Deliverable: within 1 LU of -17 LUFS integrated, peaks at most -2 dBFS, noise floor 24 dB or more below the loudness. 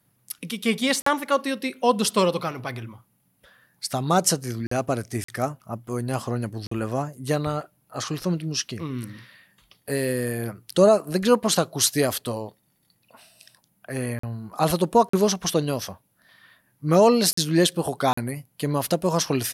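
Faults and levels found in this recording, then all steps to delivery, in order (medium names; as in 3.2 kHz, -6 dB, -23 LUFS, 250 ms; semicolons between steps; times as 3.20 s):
dropouts 8; longest dropout 44 ms; loudness -24.0 LUFS; peak level -6.5 dBFS; loudness target -17.0 LUFS
-> interpolate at 1.02/4.67/5.24/6.67/14.19/15.09/17.33/18.13 s, 44 ms; trim +7 dB; peak limiter -2 dBFS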